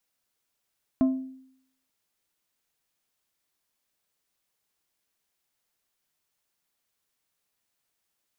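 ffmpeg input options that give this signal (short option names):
-f lavfi -i "aevalsrc='0.158*pow(10,-3*t/0.71)*sin(2*PI*262*t)+0.0422*pow(10,-3*t/0.374)*sin(2*PI*655*t)+0.0112*pow(10,-3*t/0.269)*sin(2*PI*1048*t)+0.00299*pow(10,-3*t/0.23)*sin(2*PI*1310*t)+0.000794*pow(10,-3*t/0.192)*sin(2*PI*1703*t)':d=0.89:s=44100"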